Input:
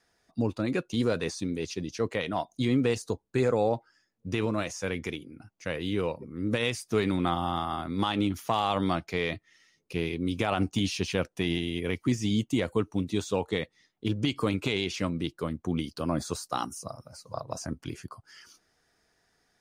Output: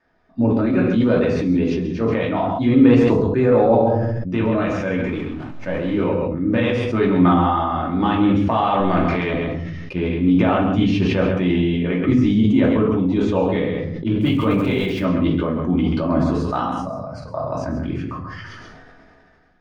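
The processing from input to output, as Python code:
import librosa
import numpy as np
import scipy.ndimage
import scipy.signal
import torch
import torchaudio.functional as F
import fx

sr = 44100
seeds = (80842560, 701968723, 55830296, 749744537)

y = fx.delta_mod(x, sr, bps=64000, step_db=-44.5, at=(4.98, 6.03))
y = fx.transient(y, sr, attack_db=-10, sustain_db=7, at=(8.79, 9.35))
y = scipy.signal.sosfilt(scipy.signal.butter(2, 2000.0, 'lowpass', fs=sr, output='sos'), y)
y = y + 10.0 ** (-8.0 / 20.0) * np.pad(y, (int(134 * sr / 1000.0), 0))[:len(y)]
y = fx.room_shoebox(y, sr, seeds[0], volume_m3=340.0, walls='furnished', distance_m=2.6)
y = fx.sample_gate(y, sr, floor_db=-45.0, at=(14.21, 15.05))
y = fx.sustainer(y, sr, db_per_s=22.0)
y = y * librosa.db_to_amplitude(4.0)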